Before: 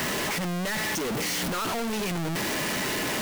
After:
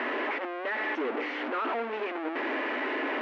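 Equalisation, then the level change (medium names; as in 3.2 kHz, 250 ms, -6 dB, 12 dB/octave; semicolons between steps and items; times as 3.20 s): brick-wall FIR high-pass 240 Hz; low-pass 2.4 kHz 24 dB/octave; 0.0 dB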